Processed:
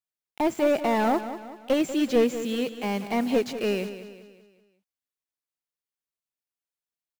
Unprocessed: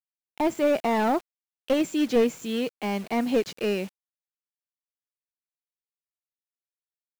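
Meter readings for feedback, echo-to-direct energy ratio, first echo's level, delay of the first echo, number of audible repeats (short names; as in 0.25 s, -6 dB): 45%, -11.0 dB, -12.0 dB, 0.19 s, 4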